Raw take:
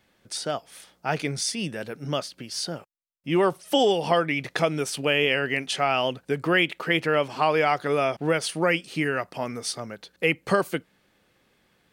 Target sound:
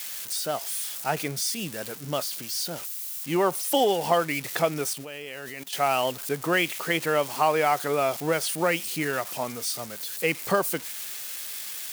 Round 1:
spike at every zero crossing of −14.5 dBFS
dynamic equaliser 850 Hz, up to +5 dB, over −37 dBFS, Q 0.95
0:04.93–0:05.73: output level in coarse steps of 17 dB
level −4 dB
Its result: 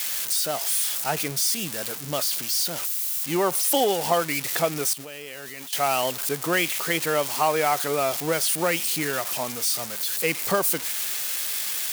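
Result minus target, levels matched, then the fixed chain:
spike at every zero crossing: distortion +7 dB
spike at every zero crossing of −22 dBFS
dynamic equaliser 850 Hz, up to +5 dB, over −37 dBFS, Q 0.95
0:04.93–0:05.73: output level in coarse steps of 17 dB
level −4 dB

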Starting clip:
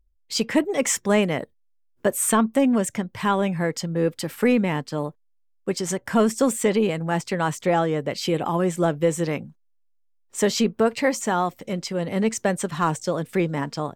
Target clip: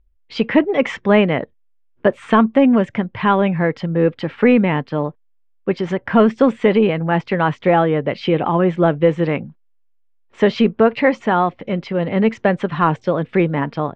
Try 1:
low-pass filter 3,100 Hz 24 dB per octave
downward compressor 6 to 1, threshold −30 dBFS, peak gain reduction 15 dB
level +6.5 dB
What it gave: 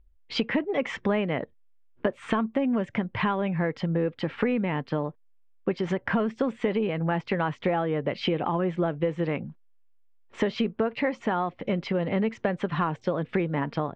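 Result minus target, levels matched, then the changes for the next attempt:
downward compressor: peak gain reduction +15 dB
remove: downward compressor 6 to 1, threshold −30 dBFS, peak gain reduction 15 dB

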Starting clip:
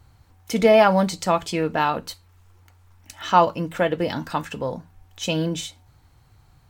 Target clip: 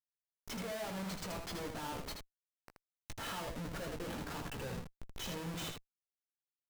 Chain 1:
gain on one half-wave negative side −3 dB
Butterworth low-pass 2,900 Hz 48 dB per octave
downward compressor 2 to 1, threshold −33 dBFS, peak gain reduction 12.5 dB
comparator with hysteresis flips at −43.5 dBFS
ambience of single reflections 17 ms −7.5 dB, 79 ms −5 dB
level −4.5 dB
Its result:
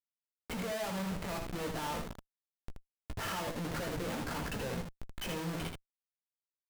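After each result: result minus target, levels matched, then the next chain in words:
downward compressor: peak gain reduction −4.5 dB; 4,000 Hz band −2.5 dB
gain on one half-wave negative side −3 dB
Butterworth low-pass 2,900 Hz 48 dB per octave
downward compressor 2 to 1, threshold −42 dBFS, peak gain reduction 17 dB
comparator with hysteresis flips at −43.5 dBFS
ambience of single reflections 17 ms −7.5 dB, 79 ms −5 dB
level −4.5 dB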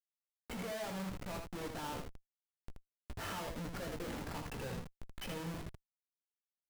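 4,000 Hz band −3.0 dB
gain on one half-wave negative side −3 dB
downward compressor 2 to 1, threshold −42 dBFS, peak gain reduction 17 dB
comparator with hysteresis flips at −43.5 dBFS
ambience of single reflections 17 ms −7.5 dB, 79 ms −5 dB
level −4.5 dB

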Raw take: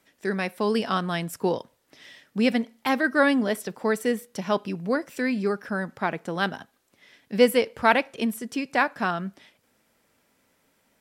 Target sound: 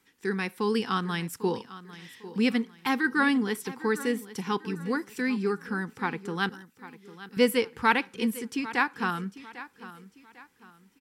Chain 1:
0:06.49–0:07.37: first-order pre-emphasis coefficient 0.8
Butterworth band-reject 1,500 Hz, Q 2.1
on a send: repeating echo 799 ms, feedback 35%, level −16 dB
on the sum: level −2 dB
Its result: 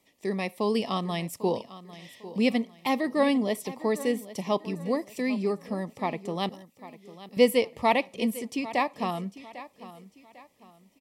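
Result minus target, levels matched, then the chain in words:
2,000 Hz band −6.5 dB
0:06.49–0:07.37: first-order pre-emphasis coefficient 0.8
Butterworth band-reject 620 Hz, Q 2.1
on a send: repeating echo 799 ms, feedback 35%, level −16 dB
on the sum: level −2 dB

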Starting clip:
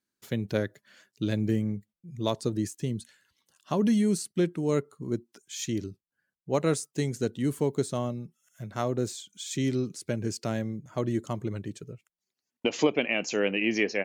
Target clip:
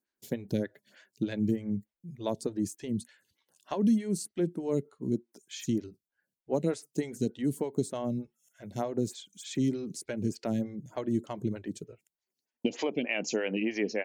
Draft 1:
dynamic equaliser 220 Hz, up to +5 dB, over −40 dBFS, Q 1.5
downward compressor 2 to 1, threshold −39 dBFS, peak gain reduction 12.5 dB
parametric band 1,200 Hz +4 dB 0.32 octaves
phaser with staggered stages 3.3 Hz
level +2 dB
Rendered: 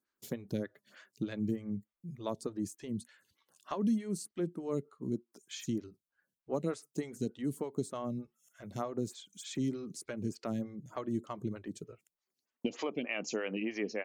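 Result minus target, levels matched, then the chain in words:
downward compressor: peak gain reduction +5.5 dB; 1,000 Hz band +3.0 dB
dynamic equaliser 220 Hz, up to +5 dB, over −40 dBFS, Q 1.5
downward compressor 2 to 1, threshold −28 dBFS, peak gain reduction 7 dB
parametric band 1,200 Hz −8 dB 0.32 octaves
phaser with staggered stages 3.3 Hz
level +2 dB

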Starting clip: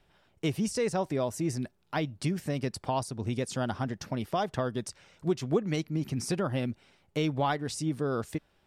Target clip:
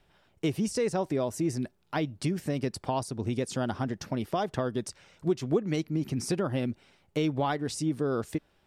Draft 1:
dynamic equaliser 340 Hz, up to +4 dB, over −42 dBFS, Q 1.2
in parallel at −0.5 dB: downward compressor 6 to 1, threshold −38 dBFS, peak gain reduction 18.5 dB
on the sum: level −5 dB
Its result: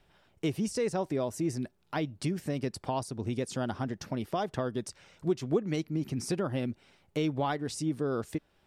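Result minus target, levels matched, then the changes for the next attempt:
downward compressor: peak gain reduction +8.5 dB
change: downward compressor 6 to 1, threshold −28 dBFS, peak gain reduction 10 dB

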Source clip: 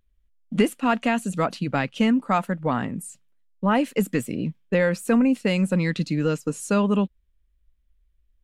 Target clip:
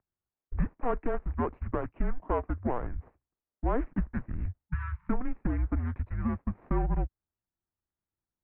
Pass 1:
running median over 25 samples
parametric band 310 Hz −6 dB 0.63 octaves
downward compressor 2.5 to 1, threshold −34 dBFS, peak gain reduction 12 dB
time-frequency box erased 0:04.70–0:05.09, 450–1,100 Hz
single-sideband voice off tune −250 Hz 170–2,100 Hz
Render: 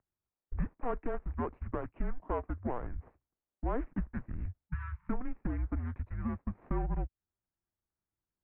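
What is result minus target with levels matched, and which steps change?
downward compressor: peak gain reduction +5 dB
change: downward compressor 2.5 to 1, threshold −25.5 dBFS, peak gain reduction 7 dB

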